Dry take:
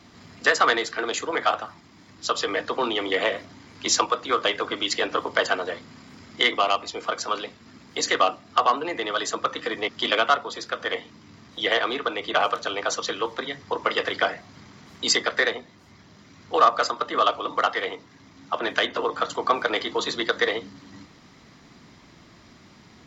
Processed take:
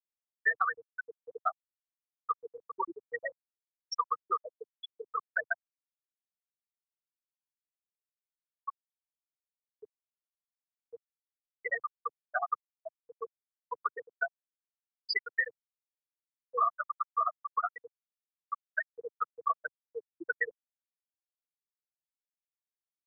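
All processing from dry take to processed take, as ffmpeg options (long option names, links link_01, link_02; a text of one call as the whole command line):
ffmpeg -i in.wav -filter_complex "[0:a]asettb=1/sr,asplit=3[link_01][link_02][link_03];[link_01]atrim=end=5.624[link_04];[link_02]atrim=start=5.62:end=10.9,asetpts=PTS-STARTPTS,afade=type=in:duration=0.004:curve=qsin,afade=type=out:start_time=5.276:duration=0.004:curve=qsin,acrossover=split=420|3000[link_05][link_06][link_07];[link_06]acompressor=threshold=-33dB:ratio=3:attack=3.2:release=140:knee=2.83:detection=peak[link_08];[link_05][link_08][link_07]amix=inputs=3:normalize=0,aphaser=in_gain=1:out_gain=1:delay=2:decay=0.23:speed=1.3:type=triangular[link_09];[link_03]atrim=start=10.896[link_10];[link_04][link_09]acrossfade=duration=0.004:curve1=hsin:curve2=qsin[link_11];[link_11][link_10]acrossfade=duration=0.004:curve1=qsin:curve2=hsin,afftfilt=real='re*gte(hypot(re,im),0.501)':imag='im*gte(hypot(re,im),0.501)':win_size=1024:overlap=0.75,equalizer=frequency=125:width_type=o:width=1:gain=4,equalizer=frequency=500:width_type=o:width=1:gain=-12,equalizer=frequency=1000:width_type=o:width=1:gain=6,equalizer=frequency=2000:width_type=o:width=1:gain=4,equalizer=frequency=4000:width_type=o:width=1:gain=-6,acrossover=split=270|3000[link_12][link_13][link_14];[link_13]acompressor=threshold=-28dB:ratio=4[link_15];[link_12][link_15][link_14]amix=inputs=3:normalize=0,volume=-1dB" out.wav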